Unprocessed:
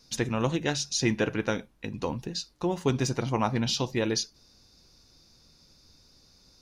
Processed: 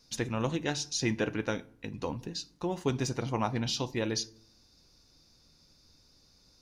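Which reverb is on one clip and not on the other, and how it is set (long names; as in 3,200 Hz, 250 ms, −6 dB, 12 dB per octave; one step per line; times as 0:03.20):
feedback delay network reverb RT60 0.59 s, low-frequency decay 1.55×, high-frequency decay 0.65×, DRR 17 dB
level −4 dB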